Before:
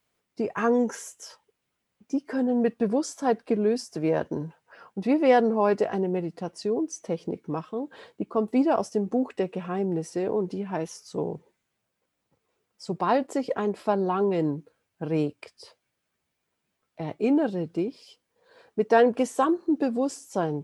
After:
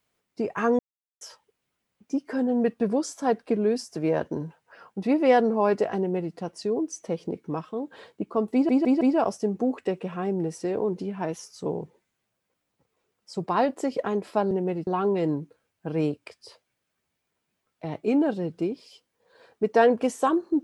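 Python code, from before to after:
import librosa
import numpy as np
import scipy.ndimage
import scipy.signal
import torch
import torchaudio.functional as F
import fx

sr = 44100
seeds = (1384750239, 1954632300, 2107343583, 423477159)

y = fx.edit(x, sr, fx.silence(start_s=0.79, length_s=0.42),
    fx.duplicate(start_s=5.98, length_s=0.36, to_s=14.03),
    fx.stutter(start_s=8.53, slice_s=0.16, count=4), tone=tone)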